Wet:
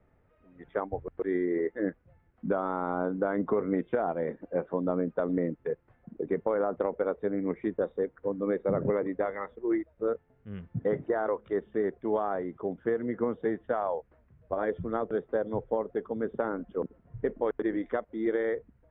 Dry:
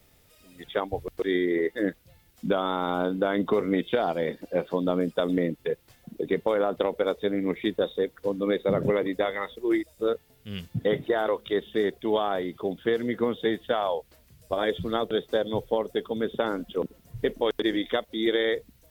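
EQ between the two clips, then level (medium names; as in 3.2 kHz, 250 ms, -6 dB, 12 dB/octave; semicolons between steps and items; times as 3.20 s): low-pass 1.7 kHz 24 dB/octave; -3.5 dB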